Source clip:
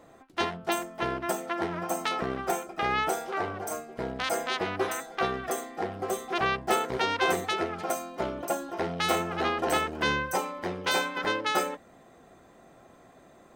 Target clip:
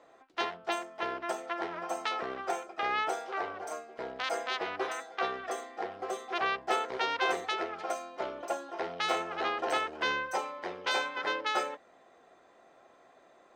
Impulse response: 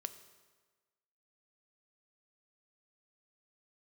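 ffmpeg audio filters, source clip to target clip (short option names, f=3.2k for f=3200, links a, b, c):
-filter_complex "[0:a]acrossover=split=350 6800:gain=0.141 1 0.112[a][b][c];[a][b][c]amix=inputs=3:normalize=0,volume=-3dB"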